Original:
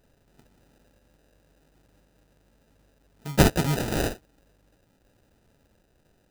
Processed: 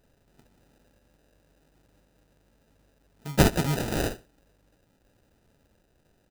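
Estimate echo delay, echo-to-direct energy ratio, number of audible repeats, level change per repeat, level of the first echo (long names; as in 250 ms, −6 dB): 73 ms, −20.0 dB, 2, −13.0 dB, −20.0 dB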